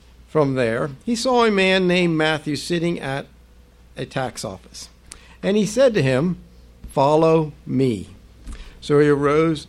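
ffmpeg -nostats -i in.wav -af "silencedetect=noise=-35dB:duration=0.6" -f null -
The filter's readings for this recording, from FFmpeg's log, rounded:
silence_start: 3.25
silence_end: 3.97 | silence_duration: 0.72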